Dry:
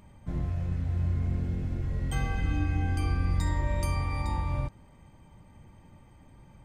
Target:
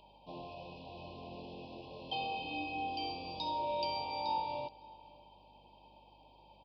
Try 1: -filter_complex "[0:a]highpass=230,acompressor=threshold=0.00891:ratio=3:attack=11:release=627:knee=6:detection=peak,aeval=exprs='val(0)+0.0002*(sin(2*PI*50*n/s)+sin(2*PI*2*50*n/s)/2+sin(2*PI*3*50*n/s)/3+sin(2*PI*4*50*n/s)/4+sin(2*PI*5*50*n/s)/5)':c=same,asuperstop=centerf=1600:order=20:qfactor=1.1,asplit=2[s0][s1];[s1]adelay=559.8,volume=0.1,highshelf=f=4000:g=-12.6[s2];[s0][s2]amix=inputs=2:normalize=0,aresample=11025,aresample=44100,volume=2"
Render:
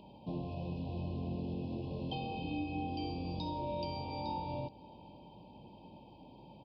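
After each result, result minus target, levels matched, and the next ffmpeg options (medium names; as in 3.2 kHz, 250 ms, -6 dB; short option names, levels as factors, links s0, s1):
250 Hz band +9.5 dB; compression: peak gain reduction +8 dB
-filter_complex "[0:a]highpass=700,acompressor=threshold=0.00891:ratio=3:attack=11:release=627:knee=6:detection=peak,aeval=exprs='val(0)+0.0002*(sin(2*PI*50*n/s)+sin(2*PI*2*50*n/s)/2+sin(2*PI*3*50*n/s)/3+sin(2*PI*4*50*n/s)/4+sin(2*PI*5*50*n/s)/5)':c=same,asuperstop=centerf=1600:order=20:qfactor=1.1,asplit=2[s0][s1];[s1]adelay=559.8,volume=0.1,highshelf=f=4000:g=-12.6[s2];[s0][s2]amix=inputs=2:normalize=0,aresample=11025,aresample=44100,volume=2"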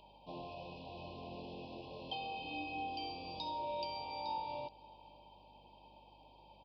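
compression: peak gain reduction +6 dB
-filter_complex "[0:a]highpass=700,aeval=exprs='val(0)+0.0002*(sin(2*PI*50*n/s)+sin(2*PI*2*50*n/s)/2+sin(2*PI*3*50*n/s)/3+sin(2*PI*4*50*n/s)/4+sin(2*PI*5*50*n/s)/5)':c=same,asuperstop=centerf=1600:order=20:qfactor=1.1,asplit=2[s0][s1];[s1]adelay=559.8,volume=0.1,highshelf=f=4000:g=-12.6[s2];[s0][s2]amix=inputs=2:normalize=0,aresample=11025,aresample=44100,volume=2"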